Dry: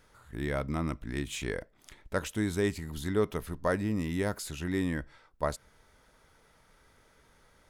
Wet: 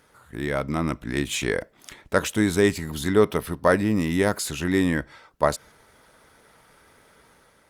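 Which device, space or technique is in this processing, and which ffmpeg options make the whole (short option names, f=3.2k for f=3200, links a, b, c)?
video call: -filter_complex "[0:a]asettb=1/sr,asplit=3[a][b][c];[a]atrim=end=3.234[d];[b]atrim=start=3.23:end=3.87,asetpts=PTS-STARTPTS,afade=t=in:d=0.004:c=qsin,afade=t=out:st=0.636:d=0.004:c=qsin,bandreject=f=6.8k:w=5.1[e];[c]atrim=start=3.866[f];[d][e]acrossfade=d=0.004:c1=hsin:c2=qsin[g];[g][f]acrossfade=d=0.004:c1=qsin:c2=hsin,highpass=f=150:p=1,dynaudnorm=f=560:g=3:m=4dB,volume=6.5dB" -ar 48000 -c:a libopus -b:a 32k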